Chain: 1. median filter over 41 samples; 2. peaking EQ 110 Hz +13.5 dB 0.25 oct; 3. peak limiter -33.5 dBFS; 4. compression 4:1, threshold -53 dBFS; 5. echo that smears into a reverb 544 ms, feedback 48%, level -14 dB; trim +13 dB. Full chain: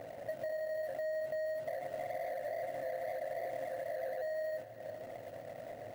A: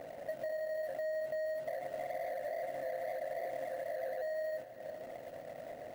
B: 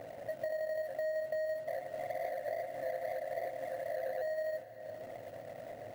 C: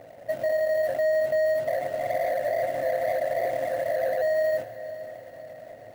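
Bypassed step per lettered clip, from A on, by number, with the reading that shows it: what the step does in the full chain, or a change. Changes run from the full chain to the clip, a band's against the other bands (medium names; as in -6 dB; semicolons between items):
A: 2, 125 Hz band -4.0 dB; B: 3, mean gain reduction 3.5 dB; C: 4, mean gain reduction 9.5 dB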